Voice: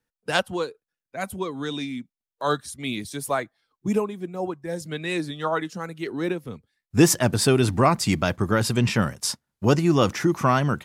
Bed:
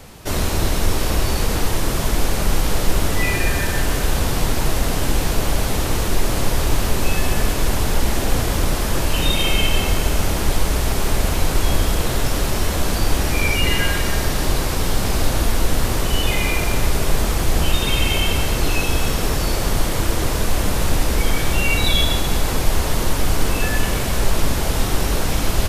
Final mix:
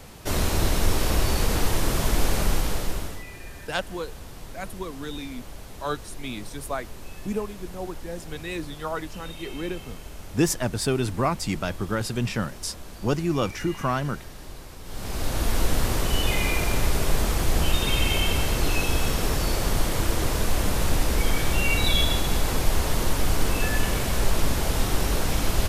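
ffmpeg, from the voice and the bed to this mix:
-filter_complex "[0:a]adelay=3400,volume=0.531[s0];[1:a]volume=4.73,afade=t=out:st=2.37:d=0.87:silence=0.125893,afade=t=in:st=14.84:d=0.75:silence=0.141254[s1];[s0][s1]amix=inputs=2:normalize=0"

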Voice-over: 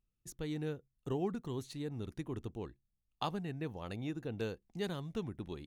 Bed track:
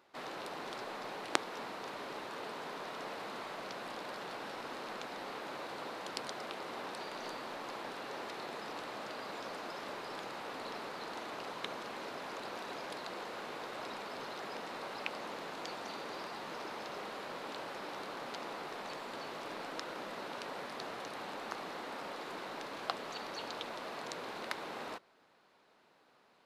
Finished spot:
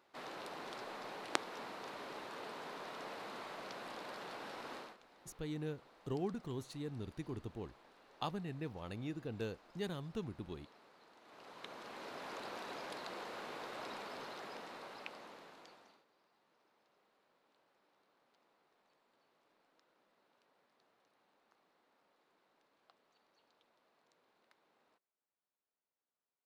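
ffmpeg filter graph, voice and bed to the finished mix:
-filter_complex "[0:a]adelay=5000,volume=0.708[s0];[1:a]volume=5.01,afade=t=out:st=4.76:d=0.21:silence=0.141254,afade=t=in:st=11.21:d=1.11:silence=0.125893,afade=t=out:st=13.99:d=2.06:silence=0.0334965[s1];[s0][s1]amix=inputs=2:normalize=0"

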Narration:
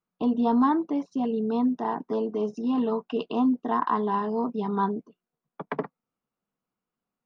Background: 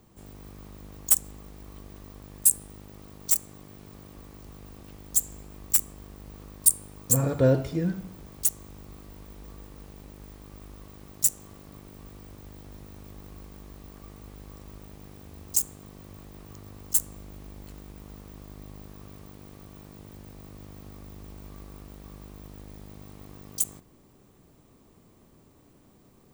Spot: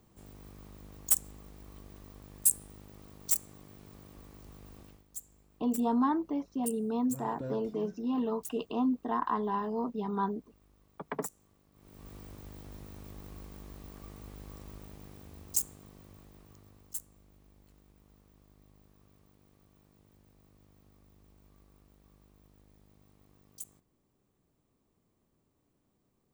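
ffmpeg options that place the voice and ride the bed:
-filter_complex "[0:a]adelay=5400,volume=0.501[s0];[1:a]volume=3.98,afade=t=out:st=4.81:d=0.24:silence=0.199526,afade=t=in:st=11.74:d=0.4:silence=0.133352,afade=t=out:st=14.61:d=2.45:silence=0.16788[s1];[s0][s1]amix=inputs=2:normalize=0"

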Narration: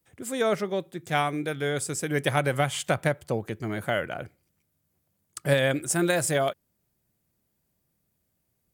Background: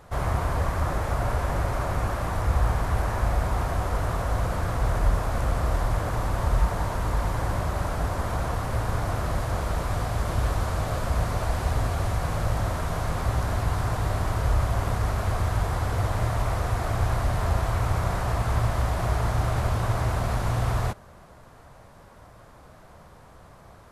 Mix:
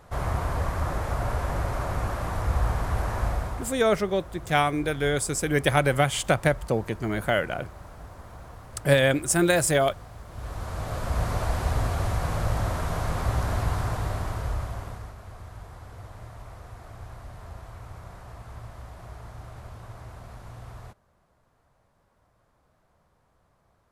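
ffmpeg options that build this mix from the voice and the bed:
-filter_complex "[0:a]adelay=3400,volume=1.41[s0];[1:a]volume=5.01,afade=t=out:st=3.25:d=0.51:silence=0.188365,afade=t=in:st=10.3:d=1.02:silence=0.158489,afade=t=out:st=13.63:d=1.52:silence=0.141254[s1];[s0][s1]amix=inputs=2:normalize=0"

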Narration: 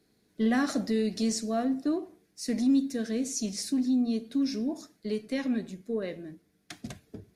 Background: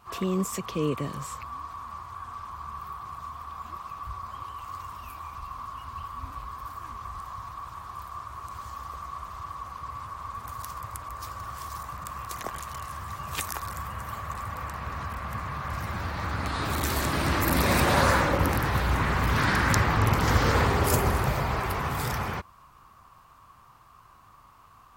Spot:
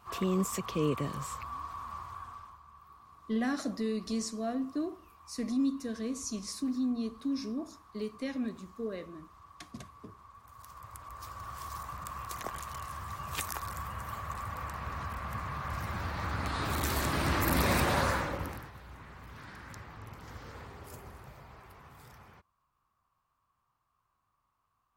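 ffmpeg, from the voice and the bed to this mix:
-filter_complex "[0:a]adelay=2900,volume=0.531[s0];[1:a]volume=3.55,afade=t=out:st=2.04:d=0.57:silence=0.177828,afade=t=in:st=10.48:d=1.24:silence=0.211349,afade=t=out:st=17.64:d=1.08:silence=0.0944061[s1];[s0][s1]amix=inputs=2:normalize=0"

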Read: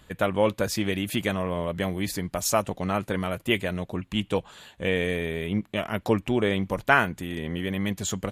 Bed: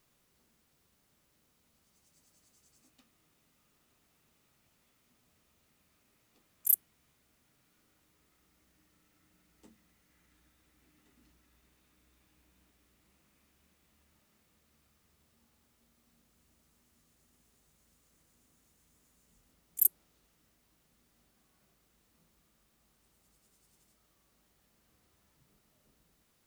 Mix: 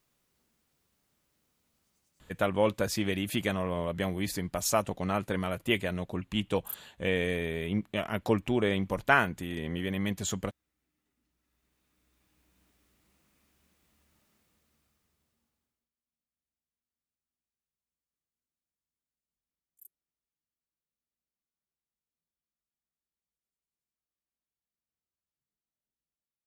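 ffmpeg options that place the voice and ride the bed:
-filter_complex "[0:a]adelay=2200,volume=0.668[s0];[1:a]volume=3.55,afade=t=out:st=1.86:d=0.65:silence=0.281838,afade=t=in:st=11.29:d=1.39:silence=0.199526,afade=t=out:st=14.25:d=1.65:silence=0.0334965[s1];[s0][s1]amix=inputs=2:normalize=0"

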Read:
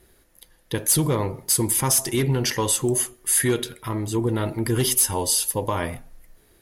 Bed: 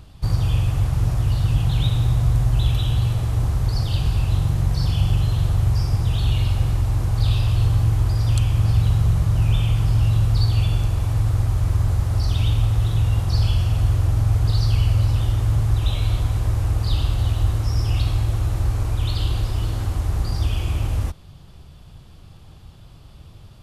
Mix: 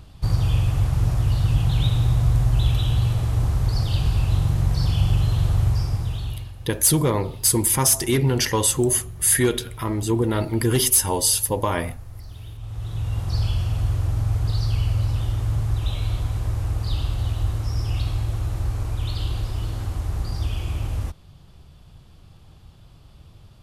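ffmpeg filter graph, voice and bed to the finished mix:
-filter_complex "[0:a]adelay=5950,volume=1.26[s0];[1:a]volume=5.31,afade=t=out:st=5.61:d=0.91:silence=0.11885,afade=t=in:st=12.58:d=0.76:silence=0.177828[s1];[s0][s1]amix=inputs=2:normalize=0"

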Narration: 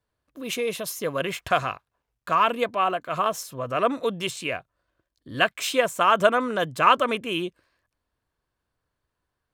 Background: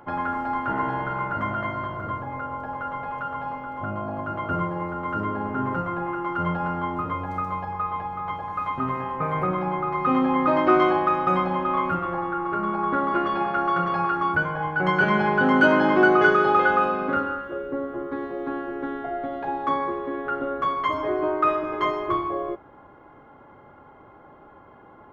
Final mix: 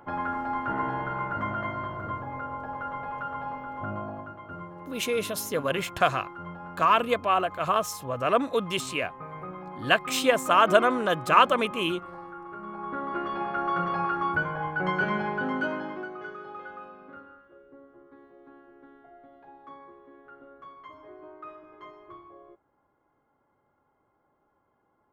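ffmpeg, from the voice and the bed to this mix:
-filter_complex "[0:a]adelay=4500,volume=0.944[s0];[1:a]volume=2.24,afade=t=out:st=3.96:d=0.4:silence=0.281838,afade=t=in:st=12.6:d=1.24:silence=0.298538,afade=t=out:st=14.62:d=1.47:silence=0.11885[s1];[s0][s1]amix=inputs=2:normalize=0"

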